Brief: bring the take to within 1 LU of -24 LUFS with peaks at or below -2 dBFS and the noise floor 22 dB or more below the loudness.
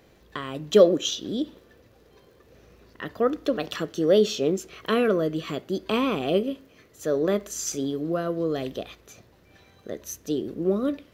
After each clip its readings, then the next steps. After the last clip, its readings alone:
tick rate 31 per s; loudness -25.5 LUFS; peak level -4.5 dBFS; loudness target -24.0 LUFS
-> de-click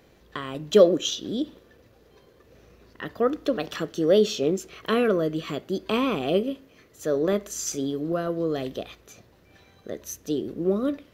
tick rate 0.18 per s; loudness -25.5 LUFS; peak level -4.5 dBFS; loudness target -24.0 LUFS
-> trim +1.5 dB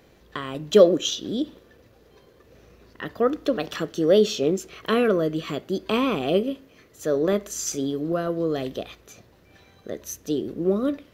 loudness -24.0 LUFS; peak level -3.0 dBFS; noise floor -56 dBFS

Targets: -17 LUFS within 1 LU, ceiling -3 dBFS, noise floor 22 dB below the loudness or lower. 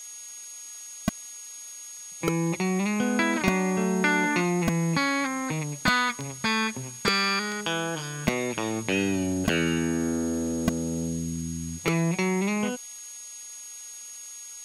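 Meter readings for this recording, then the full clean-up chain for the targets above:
steady tone 6.6 kHz; tone level -40 dBFS; noise floor -42 dBFS; noise floor target -49 dBFS; loudness -26.5 LUFS; peak level -8.5 dBFS; loudness target -17.0 LUFS
-> band-stop 6.6 kHz, Q 30; noise reduction 7 dB, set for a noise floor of -42 dBFS; trim +9.5 dB; peak limiter -3 dBFS

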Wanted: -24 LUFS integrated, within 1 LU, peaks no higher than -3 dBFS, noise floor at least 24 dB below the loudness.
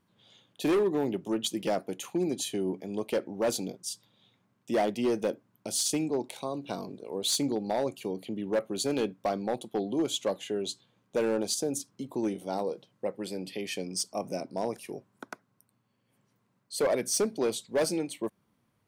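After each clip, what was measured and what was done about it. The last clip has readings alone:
clipped samples 1.5%; clipping level -21.5 dBFS; loudness -31.5 LUFS; peak level -21.5 dBFS; loudness target -24.0 LUFS
-> clip repair -21.5 dBFS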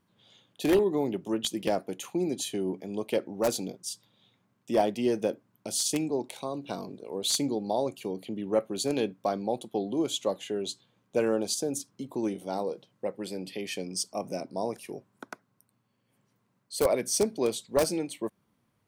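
clipped samples 0.0%; loudness -30.5 LUFS; peak level -12.5 dBFS; loudness target -24.0 LUFS
-> trim +6.5 dB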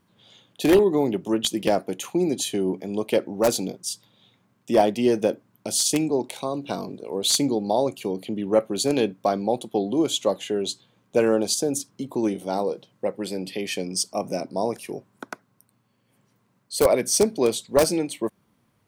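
loudness -24.0 LUFS; peak level -6.0 dBFS; noise floor -67 dBFS

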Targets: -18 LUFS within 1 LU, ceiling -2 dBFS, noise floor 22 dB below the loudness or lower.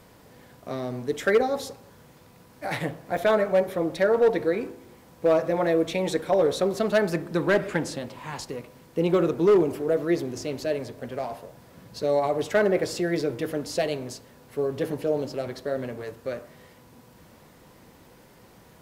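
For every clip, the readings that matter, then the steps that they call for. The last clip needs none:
clipped samples 0.4%; clipping level -13.5 dBFS; dropouts 1; longest dropout 4.0 ms; loudness -26.0 LUFS; peak level -13.5 dBFS; loudness target -18.0 LUFS
-> clip repair -13.5 dBFS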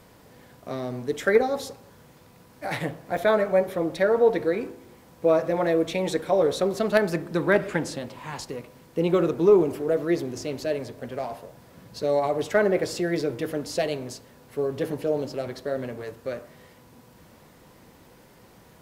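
clipped samples 0.0%; dropouts 1; longest dropout 4.0 ms
-> interpolate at 3.17 s, 4 ms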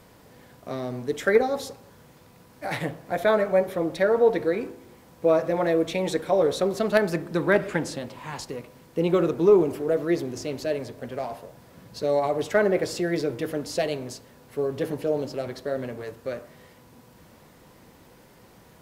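dropouts 0; loudness -25.5 LUFS; peak level -5.0 dBFS; loudness target -18.0 LUFS
-> trim +7.5 dB; peak limiter -2 dBFS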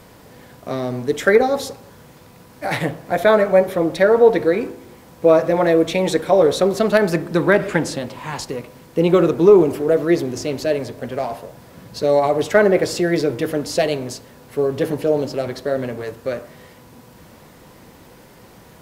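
loudness -18.0 LUFS; peak level -2.0 dBFS; noise floor -46 dBFS

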